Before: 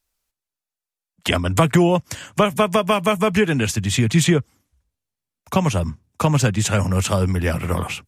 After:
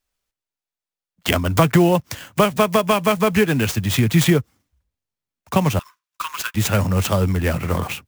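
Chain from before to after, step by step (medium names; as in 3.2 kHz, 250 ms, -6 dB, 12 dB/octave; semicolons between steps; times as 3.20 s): in parallel at -8 dB: crossover distortion -37.5 dBFS; 5.79–6.55 s: on the sum: rippled Chebyshev high-pass 980 Hz, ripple 3 dB; sampling jitter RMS 0.024 ms; trim -2 dB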